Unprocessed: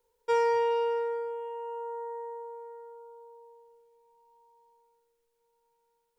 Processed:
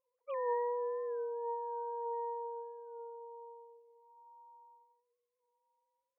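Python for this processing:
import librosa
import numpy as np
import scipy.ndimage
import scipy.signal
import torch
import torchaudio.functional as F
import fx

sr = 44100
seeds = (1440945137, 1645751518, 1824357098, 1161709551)

y = fx.sine_speech(x, sr)
y = y * 10.0 ** (-7.0 / 20.0)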